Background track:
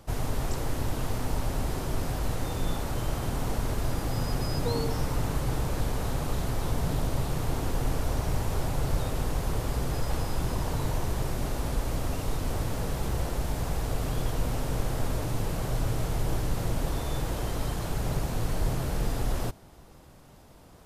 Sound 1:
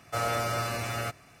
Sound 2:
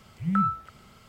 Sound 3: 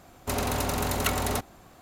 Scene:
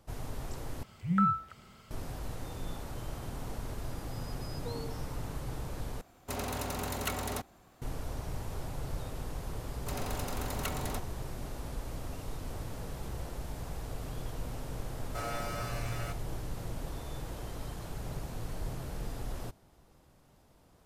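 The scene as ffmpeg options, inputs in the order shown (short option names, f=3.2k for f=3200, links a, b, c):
-filter_complex "[3:a]asplit=2[a][b];[0:a]volume=-10dB,asplit=3[c][d][e];[c]atrim=end=0.834[f];[2:a]atrim=end=1.08,asetpts=PTS-STARTPTS,volume=-2.5dB[g];[d]atrim=start=1.906:end=6.014[h];[a]atrim=end=1.81,asetpts=PTS-STARTPTS,volume=-8dB[i];[e]atrim=start=7.816[j];[b]atrim=end=1.81,asetpts=PTS-STARTPTS,volume=-10.5dB,afade=t=in:d=0.004:c=hsin,afade=t=out:st=1.806:d=0.004:c=hsin,adelay=9590[k];[1:a]atrim=end=1.4,asetpts=PTS-STARTPTS,volume=-9dB,afade=t=in:d=0.004:c=hsin,afade=t=out:st=1.396:d=0.004:c=hsin,adelay=15020[l];[f][g]acrossfade=d=0.004:c1=hsin:c2=hsin[m];[m][h]acrossfade=d=0.004:c1=hsin:c2=hsin[n];[n][i]acrossfade=d=0.004:c1=hsin:c2=hsin[o];[o][j]acrossfade=d=0.004:c1=hsin:c2=hsin[p];[p][k][l]amix=inputs=3:normalize=0"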